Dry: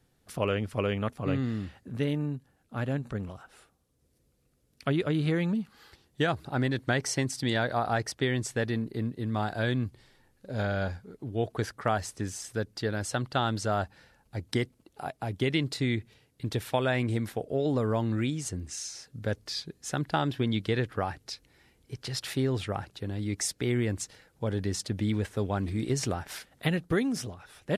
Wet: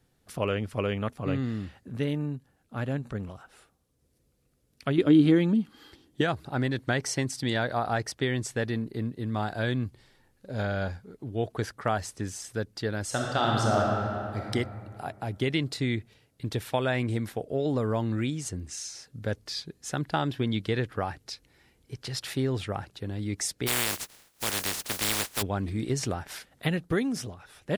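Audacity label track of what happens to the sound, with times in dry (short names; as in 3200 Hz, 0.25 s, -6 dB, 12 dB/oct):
4.980000	6.210000	small resonant body resonances 290/3200 Hz, height 15 dB
13.040000	14.510000	reverb throw, RT60 2.5 s, DRR -2 dB
23.660000	25.410000	spectral contrast lowered exponent 0.17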